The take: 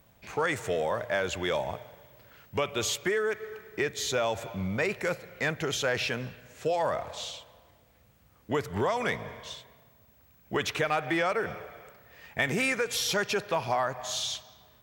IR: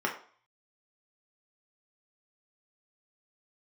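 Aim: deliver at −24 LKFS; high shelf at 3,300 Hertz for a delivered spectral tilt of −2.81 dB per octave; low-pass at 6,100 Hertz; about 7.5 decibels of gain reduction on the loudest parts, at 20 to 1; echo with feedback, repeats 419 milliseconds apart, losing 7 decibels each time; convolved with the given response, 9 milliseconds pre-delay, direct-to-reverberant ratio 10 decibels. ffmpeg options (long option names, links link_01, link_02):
-filter_complex "[0:a]lowpass=6100,highshelf=frequency=3300:gain=9,acompressor=threshold=-29dB:ratio=20,aecho=1:1:419|838|1257|1676|2095:0.447|0.201|0.0905|0.0407|0.0183,asplit=2[link_01][link_02];[1:a]atrim=start_sample=2205,adelay=9[link_03];[link_02][link_03]afir=irnorm=-1:irlink=0,volume=-19dB[link_04];[link_01][link_04]amix=inputs=2:normalize=0,volume=9.5dB"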